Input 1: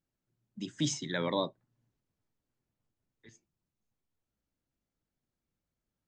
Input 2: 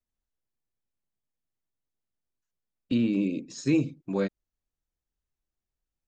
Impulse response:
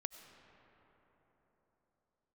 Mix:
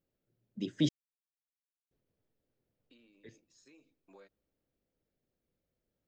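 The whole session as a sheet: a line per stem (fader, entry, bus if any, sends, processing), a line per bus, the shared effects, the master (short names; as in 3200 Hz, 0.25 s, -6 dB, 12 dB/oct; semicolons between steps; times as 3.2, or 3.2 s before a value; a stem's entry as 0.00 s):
+0.5 dB, 0.00 s, muted 0.89–1.91, no send, graphic EQ 500/1000/8000 Hz +10/-6/-11 dB
-16.5 dB, 0.00 s, send -23 dB, HPF 550 Hz 12 dB/oct; compressor 5:1, threshold -39 dBFS, peak gain reduction 11 dB; auto duck -11 dB, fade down 0.65 s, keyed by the first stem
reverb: on, pre-delay 55 ms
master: dry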